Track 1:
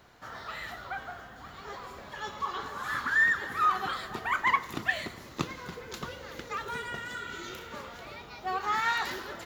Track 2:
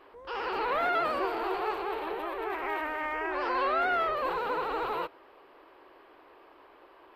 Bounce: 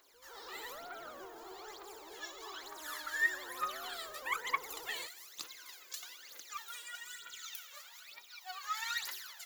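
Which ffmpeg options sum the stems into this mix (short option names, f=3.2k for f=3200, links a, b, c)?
-filter_complex "[0:a]highpass=f=820:p=1,aderivative,aphaser=in_gain=1:out_gain=1:delay=1.9:decay=0.77:speed=1.1:type=triangular,volume=-0.5dB[a];[1:a]lowpass=1.2k,asoftclip=type=tanh:threshold=-25dB,volume=-17dB[b];[a][b]amix=inputs=2:normalize=0"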